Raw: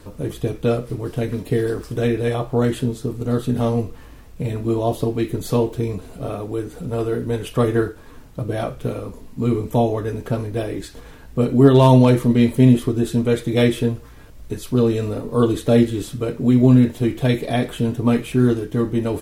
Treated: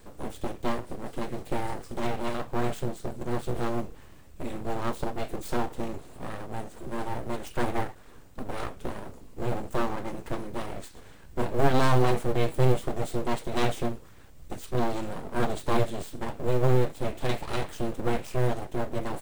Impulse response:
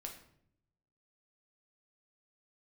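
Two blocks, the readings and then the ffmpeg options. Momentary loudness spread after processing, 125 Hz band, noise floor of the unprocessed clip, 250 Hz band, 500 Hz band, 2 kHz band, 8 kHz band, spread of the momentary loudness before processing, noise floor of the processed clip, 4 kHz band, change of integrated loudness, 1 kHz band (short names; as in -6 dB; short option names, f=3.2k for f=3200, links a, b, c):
14 LU, -12.0 dB, -41 dBFS, -15.0 dB, -10.5 dB, -4.5 dB, -6.0 dB, 14 LU, -48 dBFS, -7.0 dB, -11.5 dB, -3.5 dB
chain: -af "aeval=exprs='abs(val(0))':c=same,aexciter=amount=1.2:drive=2.6:freq=7.3k,acrusher=bits=9:mode=log:mix=0:aa=0.000001,volume=-7dB"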